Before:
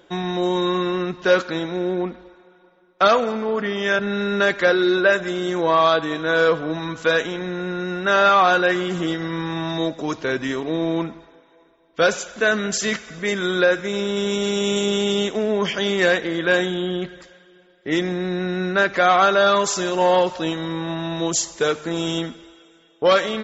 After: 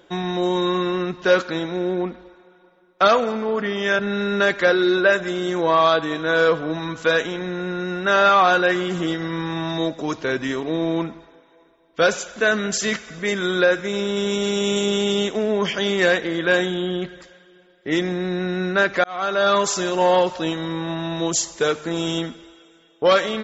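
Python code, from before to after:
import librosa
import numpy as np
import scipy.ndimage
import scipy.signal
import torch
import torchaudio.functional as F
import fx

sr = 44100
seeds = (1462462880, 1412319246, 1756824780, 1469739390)

y = fx.edit(x, sr, fx.fade_in_span(start_s=19.04, length_s=0.51), tone=tone)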